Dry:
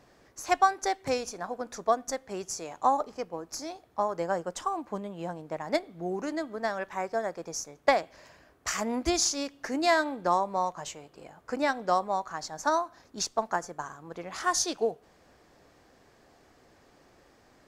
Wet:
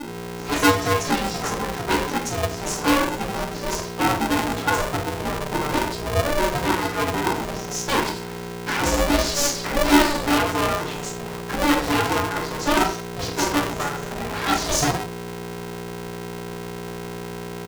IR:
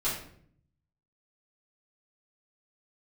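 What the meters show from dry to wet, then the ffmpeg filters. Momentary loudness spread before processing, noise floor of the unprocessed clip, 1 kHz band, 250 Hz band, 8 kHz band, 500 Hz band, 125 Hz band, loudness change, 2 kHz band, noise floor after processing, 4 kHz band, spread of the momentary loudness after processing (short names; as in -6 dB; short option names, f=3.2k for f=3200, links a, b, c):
13 LU, -61 dBFS, +5.5 dB, +12.0 dB, +7.0 dB, +6.0 dB, +18.5 dB, +7.0 dB, +10.5 dB, -33 dBFS, +11.0 dB, 13 LU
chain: -filter_complex "[0:a]acrossover=split=4300[a][b];[b]adelay=170[c];[a][c]amix=inputs=2:normalize=0,aeval=exprs='val(0)+0.00794*(sin(2*PI*60*n/s)+sin(2*PI*2*60*n/s)/2+sin(2*PI*3*60*n/s)/3+sin(2*PI*4*60*n/s)/4+sin(2*PI*5*60*n/s)/5)':c=same,asplit=2[d][e];[e]aeval=exprs='0.316*sin(PI/2*5.01*val(0)/0.316)':c=same,volume=-8.5dB[f];[d][f]amix=inputs=2:normalize=0[g];[1:a]atrim=start_sample=2205,afade=t=out:st=0.23:d=0.01,atrim=end_sample=10584[h];[g][h]afir=irnorm=-1:irlink=0,aeval=exprs='val(0)*sgn(sin(2*PI*290*n/s))':c=same,volume=-8.5dB"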